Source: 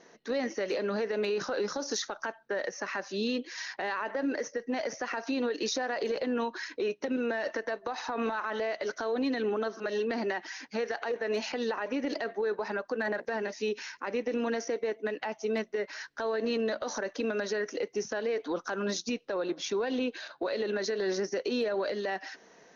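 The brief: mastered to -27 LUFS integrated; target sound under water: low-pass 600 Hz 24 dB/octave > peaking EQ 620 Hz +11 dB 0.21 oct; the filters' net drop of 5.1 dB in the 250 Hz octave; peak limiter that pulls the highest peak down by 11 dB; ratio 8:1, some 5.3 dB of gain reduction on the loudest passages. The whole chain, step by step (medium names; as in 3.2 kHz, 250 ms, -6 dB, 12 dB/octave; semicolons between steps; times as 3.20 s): peaking EQ 250 Hz -6 dB; compression 8:1, threshold -34 dBFS; peak limiter -34.5 dBFS; low-pass 600 Hz 24 dB/octave; peaking EQ 620 Hz +11 dB 0.21 oct; trim +16.5 dB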